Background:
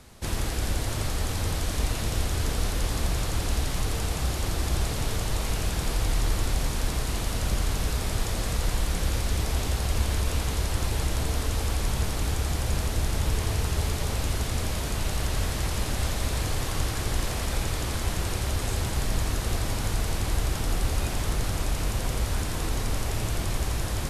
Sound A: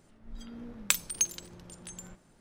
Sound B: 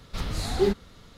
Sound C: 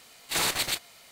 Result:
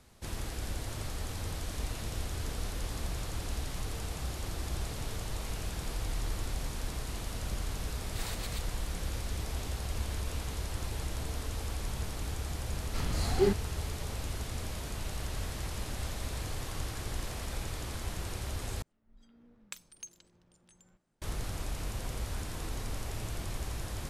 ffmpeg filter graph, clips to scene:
-filter_complex "[0:a]volume=0.335[s0];[2:a]bandreject=f=3700:w=7[s1];[1:a]highshelf=f=12000:g=-10[s2];[s0]asplit=2[s3][s4];[s3]atrim=end=18.824[s5];[s2]atrim=end=2.4,asetpts=PTS-STARTPTS,volume=0.15[s6];[s4]atrim=start=21.216[s7];[3:a]atrim=end=1.11,asetpts=PTS-STARTPTS,volume=0.15,afade=t=in:d=0.004:c=hsin,afade=t=out:st=1.106:d=0.004:c=hsin,adelay=7840[s8];[s1]atrim=end=1.17,asetpts=PTS-STARTPTS,volume=0.668,afade=t=in:d=0.004:c=hsin,afade=t=out:st=1.166:d=0.004:c=hsin,adelay=12800[s9];[s5][s6]acrossfade=d=0.004:c1=hsin:c2=hsin[s10];[s10][s7]acrossfade=d=0.004:c1=hsin:c2=hsin[s11];[s11][s8][s9]amix=inputs=3:normalize=0"

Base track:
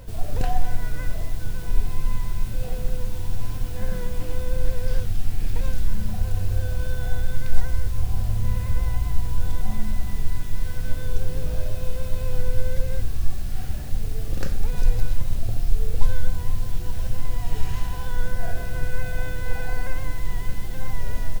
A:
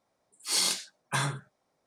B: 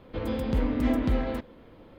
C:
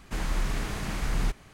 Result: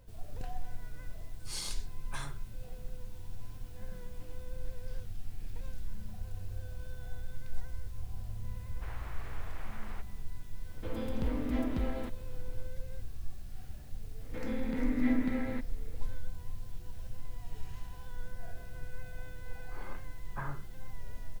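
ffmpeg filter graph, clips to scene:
-filter_complex "[1:a]asplit=2[s0][s1];[2:a]asplit=2[s2][s3];[0:a]volume=0.141[s4];[3:a]highpass=490,lowpass=2100[s5];[s3]highpass=220,equalizer=f=250:t=q:w=4:g=7,equalizer=f=360:t=q:w=4:g=-8,equalizer=f=660:t=q:w=4:g=-7,equalizer=f=1100:t=q:w=4:g=-6,equalizer=f=2000:t=q:w=4:g=8,equalizer=f=3000:t=q:w=4:g=-8,lowpass=f=4100:w=0.5412,lowpass=f=4100:w=1.3066[s6];[s1]lowpass=f=1600:w=0.5412,lowpass=f=1600:w=1.3066[s7];[s0]atrim=end=1.86,asetpts=PTS-STARTPTS,volume=0.211,afade=t=in:d=0.004:c=hsin,afade=t=out:st=1.856:d=0.004:c=hsin,adelay=1000[s8];[s5]atrim=end=1.53,asetpts=PTS-STARTPTS,volume=0.299,afade=t=in:d=0.004:c=hsin,afade=t=out:st=1.526:d=0.004:c=hsin,adelay=8700[s9];[s2]atrim=end=1.98,asetpts=PTS-STARTPTS,volume=0.398,afade=t=in:d=0.004:c=hsin,afade=t=out:st=1.976:d=0.004:c=hsin,adelay=10690[s10];[s6]atrim=end=1.98,asetpts=PTS-STARTPTS,volume=0.501,afade=t=in:d=0.004:c=hsin,afade=t=out:st=1.976:d=0.004:c=hsin,adelay=14200[s11];[s7]atrim=end=1.86,asetpts=PTS-STARTPTS,volume=0.335,afade=t=in:d=0.004:c=hsin,afade=t=out:st=1.856:d=0.004:c=hsin,adelay=848484S[s12];[s4][s8][s9][s10][s11][s12]amix=inputs=6:normalize=0"

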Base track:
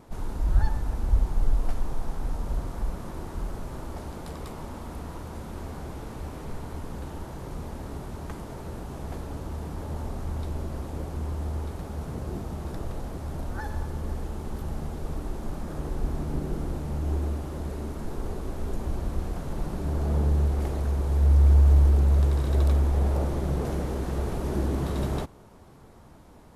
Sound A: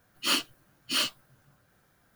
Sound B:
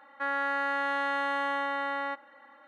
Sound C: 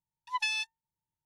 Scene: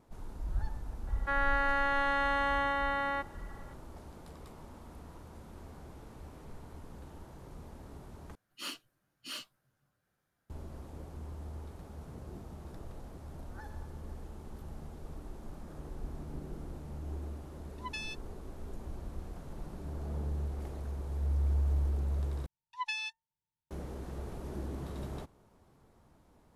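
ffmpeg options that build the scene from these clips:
-filter_complex "[3:a]asplit=2[s0][s1];[0:a]volume=0.237[s2];[1:a]aresample=32000,aresample=44100[s3];[s1]highshelf=f=6400:g=-10.5[s4];[s2]asplit=3[s5][s6][s7];[s5]atrim=end=8.354[s8];[s3]atrim=end=2.15,asetpts=PTS-STARTPTS,volume=0.178[s9];[s6]atrim=start=10.496:end=22.464[s10];[s4]atrim=end=1.25,asetpts=PTS-STARTPTS,volume=0.631[s11];[s7]atrim=start=23.706[s12];[2:a]atrim=end=2.67,asetpts=PTS-STARTPTS,volume=0.944,afade=t=in:d=0.004:c=hsin,afade=t=out:st=2.666:d=0.004:c=hsin,adelay=1070[s13];[s0]atrim=end=1.25,asetpts=PTS-STARTPTS,volume=0.316,afade=t=in:d=0.004:c=hsin,afade=t=out:st=1.246:d=0.004:c=hsin,adelay=17510[s14];[s8][s9]acrossfade=d=0.004:c1=hsin:c2=hsin[s15];[s15][s10]acrossfade=d=0.004:c1=hsin:c2=hsin[s16];[s16][s11]acrossfade=d=0.004:c1=hsin:c2=hsin[s17];[s17][s12]acrossfade=d=0.004:c1=hsin:c2=hsin[s18];[s18][s13][s14]amix=inputs=3:normalize=0"

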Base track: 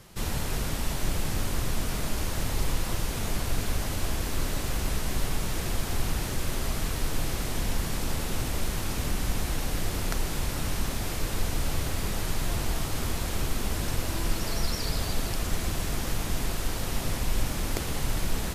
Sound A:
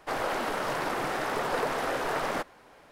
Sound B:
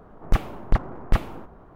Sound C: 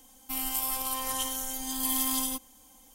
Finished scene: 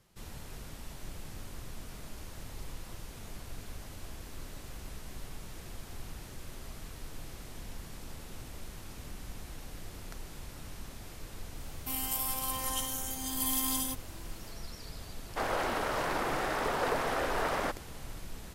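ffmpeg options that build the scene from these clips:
-filter_complex "[0:a]volume=0.168[s0];[3:a]atrim=end=2.94,asetpts=PTS-STARTPTS,volume=0.708,afade=t=in:d=0.004:c=hsin,afade=t=out:st=2.936:d=0.004:c=hsin,adelay=11570[s1];[1:a]atrim=end=2.91,asetpts=PTS-STARTPTS,volume=0.794,afade=t=in:d=0.004:c=hsin,afade=t=out:st=2.906:d=0.004:c=hsin,adelay=15290[s2];[s0][s1][s2]amix=inputs=3:normalize=0"

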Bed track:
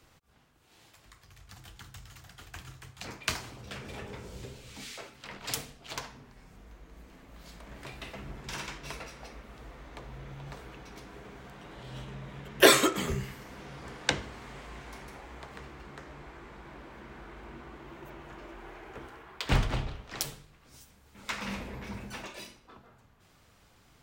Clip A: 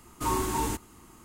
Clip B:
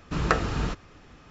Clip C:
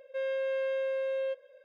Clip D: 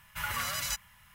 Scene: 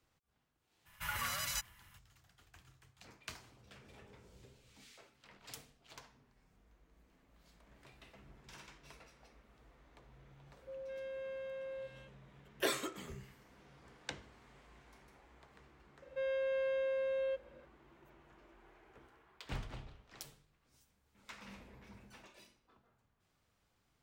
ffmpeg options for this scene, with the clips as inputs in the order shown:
-filter_complex "[3:a]asplit=2[s0][s1];[0:a]volume=0.15[s2];[s0]acrossover=split=820[s3][s4];[s4]adelay=210[s5];[s3][s5]amix=inputs=2:normalize=0[s6];[4:a]atrim=end=1.14,asetpts=PTS-STARTPTS,volume=0.562,afade=t=in:d=0.02,afade=t=out:st=1.12:d=0.02,adelay=850[s7];[s6]atrim=end=1.64,asetpts=PTS-STARTPTS,volume=0.237,afade=t=in:d=0.004:c=hsin,afade=t=out:st=1.636:d=0.004:c=hsin,adelay=10530[s8];[s1]atrim=end=1.64,asetpts=PTS-STARTPTS,volume=0.631,afade=t=in:d=0.004:c=hsin,afade=t=out:st=1.636:d=0.004:c=hsin,adelay=16020[s9];[s2][s7][s8][s9]amix=inputs=4:normalize=0"

